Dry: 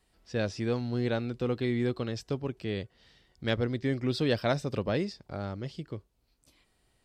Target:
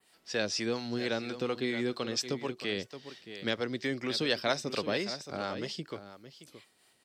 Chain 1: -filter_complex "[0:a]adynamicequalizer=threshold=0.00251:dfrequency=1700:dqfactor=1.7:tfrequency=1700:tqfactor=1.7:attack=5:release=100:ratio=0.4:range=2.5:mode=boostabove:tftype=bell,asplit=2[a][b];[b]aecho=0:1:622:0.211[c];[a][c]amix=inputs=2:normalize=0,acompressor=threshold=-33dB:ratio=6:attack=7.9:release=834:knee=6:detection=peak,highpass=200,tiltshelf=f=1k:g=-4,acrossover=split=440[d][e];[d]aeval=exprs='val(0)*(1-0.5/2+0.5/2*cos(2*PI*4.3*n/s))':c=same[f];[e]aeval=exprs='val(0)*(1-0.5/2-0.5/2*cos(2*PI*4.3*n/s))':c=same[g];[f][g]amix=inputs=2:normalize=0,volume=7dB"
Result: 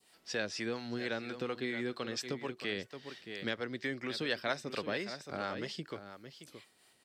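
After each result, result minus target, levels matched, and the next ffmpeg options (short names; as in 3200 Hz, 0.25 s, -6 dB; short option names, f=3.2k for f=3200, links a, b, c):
compressor: peak gain reduction +6 dB; 2000 Hz band +3.0 dB
-filter_complex "[0:a]adynamicequalizer=threshold=0.00251:dfrequency=1700:dqfactor=1.7:tfrequency=1700:tqfactor=1.7:attack=5:release=100:ratio=0.4:range=2.5:mode=boostabove:tftype=bell,asplit=2[a][b];[b]aecho=0:1:622:0.211[c];[a][c]amix=inputs=2:normalize=0,acompressor=threshold=-26.5dB:ratio=6:attack=7.9:release=834:knee=6:detection=peak,highpass=200,tiltshelf=f=1k:g=-4,acrossover=split=440[d][e];[d]aeval=exprs='val(0)*(1-0.5/2+0.5/2*cos(2*PI*4.3*n/s))':c=same[f];[e]aeval=exprs='val(0)*(1-0.5/2-0.5/2*cos(2*PI*4.3*n/s))':c=same[g];[f][g]amix=inputs=2:normalize=0,volume=7dB"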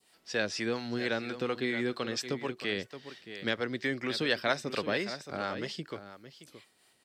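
2000 Hz band +3.0 dB
-filter_complex "[0:a]adynamicequalizer=threshold=0.00251:dfrequency=5600:dqfactor=1.7:tfrequency=5600:tqfactor=1.7:attack=5:release=100:ratio=0.4:range=2.5:mode=boostabove:tftype=bell,asplit=2[a][b];[b]aecho=0:1:622:0.211[c];[a][c]amix=inputs=2:normalize=0,acompressor=threshold=-26.5dB:ratio=6:attack=7.9:release=834:knee=6:detection=peak,highpass=200,tiltshelf=f=1k:g=-4,acrossover=split=440[d][e];[d]aeval=exprs='val(0)*(1-0.5/2+0.5/2*cos(2*PI*4.3*n/s))':c=same[f];[e]aeval=exprs='val(0)*(1-0.5/2-0.5/2*cos(2*PI*4.3*n/s))':c=same[g];[f][g]amix=inputs=2:normalize=0,volume=7dB"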